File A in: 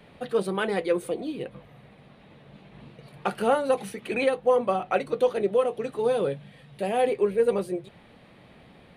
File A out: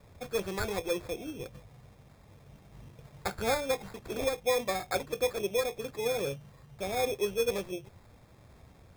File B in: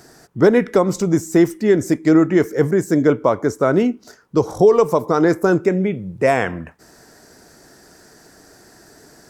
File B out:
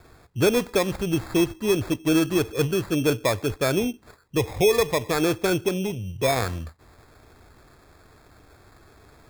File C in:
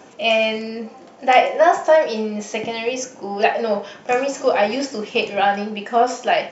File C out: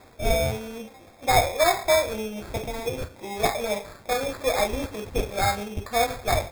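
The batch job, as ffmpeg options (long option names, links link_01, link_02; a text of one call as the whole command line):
ffmpeg -i in.wav -af "acrusher=samples=15:mix=1:aa=0.000001,lowshelf=frequency=130:width_type=q:width=1.5:gain=10,volume=-6.5dB" out.wav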